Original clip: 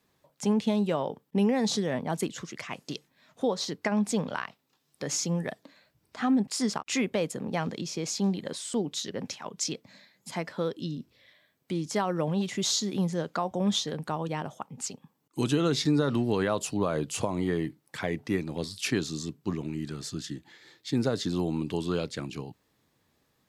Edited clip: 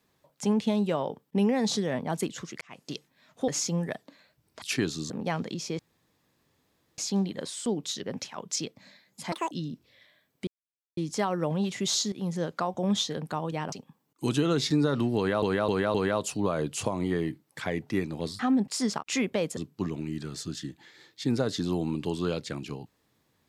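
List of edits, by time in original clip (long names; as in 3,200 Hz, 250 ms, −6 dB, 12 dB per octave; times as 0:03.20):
0:02.61–0:02.94: fade in
0:03.48–0:05.05: remove
0:06.19–0:07.37: swap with 0:18.76–0:19.24
0:08.06: splice in room tone 1.19 s
0:10.40–0:10.78: play speed 198%
0:11.74: splice in silence 0.50 s
0:12.89–0:13.14: fade in, from −13.5 dB
0:14.49–0:14.87: remove
0:16.31–0:16.57: repeat, 4 plays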